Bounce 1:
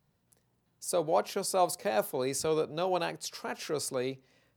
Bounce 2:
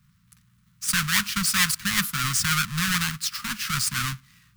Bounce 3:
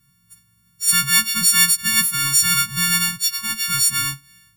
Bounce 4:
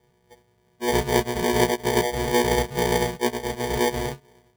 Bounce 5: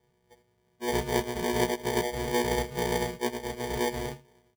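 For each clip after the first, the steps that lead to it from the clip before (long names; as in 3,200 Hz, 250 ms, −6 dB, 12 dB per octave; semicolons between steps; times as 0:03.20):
each half-wave held at its own peak; elliptic band-stop filter 200–1,200 Hz, stop band 40 dB; level +8.5 dB
every partial snapped to a pitch grid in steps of 4 semitones; low-shelf EQ 300 Hz +5 dB; level −4 dB
decimation without filtering 33×; level −4 dB
single-tap delay 79 ms −17.5 dB; level −6.5 dB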